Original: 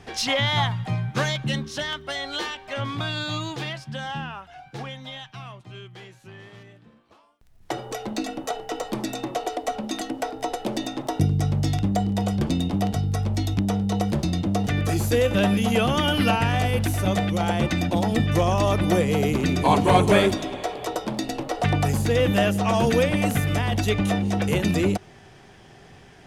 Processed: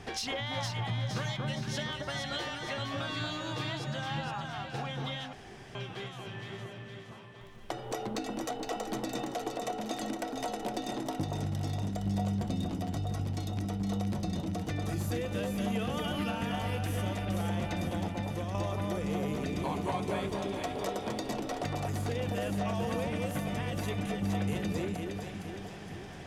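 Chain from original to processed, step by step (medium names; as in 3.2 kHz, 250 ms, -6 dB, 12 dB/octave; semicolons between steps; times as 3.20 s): 18.08–18.55 s: expander -10 dBFS; compression 5:1, threshold -35 dBFS, peak gain reduction 20.5 dB; echo whose repeats swap between lows and highs 232 ms, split 1.5 kHz, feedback 73%, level -2 dB; 5.33–5.75 s: room tone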